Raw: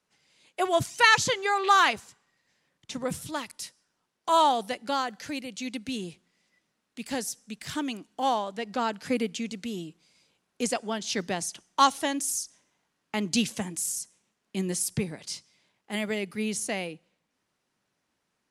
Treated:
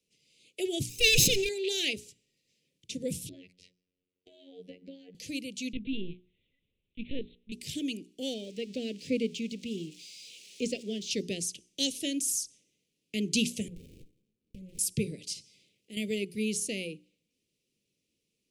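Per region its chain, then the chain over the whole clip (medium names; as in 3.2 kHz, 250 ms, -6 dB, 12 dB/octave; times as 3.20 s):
0.89–1.49 s: comb filter that takes the minimum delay 0.78 ms + decay stretcher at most 29 dB/s
3.29–5.15 s: low-pass 1.9 kHz + robot voice 90.7 Hz + compression 5:1, threshold -37 dBFS
5.73–7.52 s: dynamic bell 160 Hz, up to +7 dB, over -53 dBFS, Q 2.1 + LPC vocoder at 8 kHz pitch kept
8.34–11.11 s: zero-crossing glitches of -31 dBFS + distance through air 120 m
13.68–14.79 s: Butterworth band-stop 5.4 kHz, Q 2.9 + compression 10:1, threshold -40 dBFS + sliding maximum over 65 samples
15.33–15.97 s: compression 2.5:1, threshold -40 dBFS + transient shaper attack -1 dB, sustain +5 dB
whole clip: elliptic band-stop 480–2500 Hz, stop band 60 dB; hum notches 60/120/180/240/300/360/420 Hz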